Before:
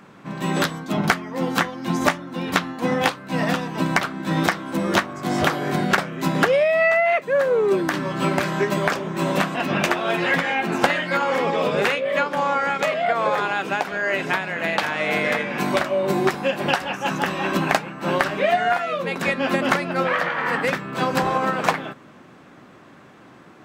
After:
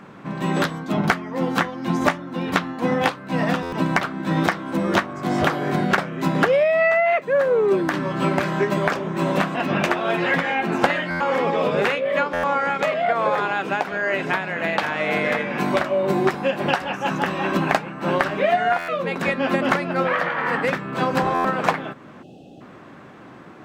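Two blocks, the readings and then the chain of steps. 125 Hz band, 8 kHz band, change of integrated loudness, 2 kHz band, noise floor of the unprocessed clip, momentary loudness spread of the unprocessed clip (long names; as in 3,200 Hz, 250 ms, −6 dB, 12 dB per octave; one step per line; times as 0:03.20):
+1.0 dB, −5.5 dB, 0.0 dB, −0.5 dB, −47 dBFS, 5 LU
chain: gain on a spectral selection 0:22.23–0:22.61, 840–2,500 Hz −29 dB
high-shelf EQ 3,600 Hz −8 dB
in parallel at −3 dB: downward compressor, threshold −36 dBFS, peak gain reduction 21 dB
on the sum: buffer that repeats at 0:03.62/0:11.10/0:12.33/0:18.78/0:21.34, samples 512, times 8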